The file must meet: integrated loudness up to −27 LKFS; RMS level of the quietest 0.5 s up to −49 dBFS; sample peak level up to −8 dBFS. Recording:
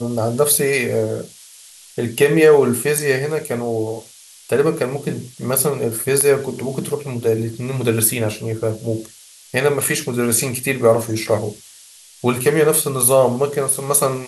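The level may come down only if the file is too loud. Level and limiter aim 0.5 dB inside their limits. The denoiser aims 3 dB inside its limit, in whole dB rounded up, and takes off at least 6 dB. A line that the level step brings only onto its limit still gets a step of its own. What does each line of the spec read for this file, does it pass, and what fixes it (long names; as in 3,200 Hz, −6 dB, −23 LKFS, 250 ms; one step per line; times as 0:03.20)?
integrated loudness −18.0 LKFS: out of spec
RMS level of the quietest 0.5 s −45 dBFS: out of spec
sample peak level −2.5 dBFS: out of spec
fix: level −9.5 dB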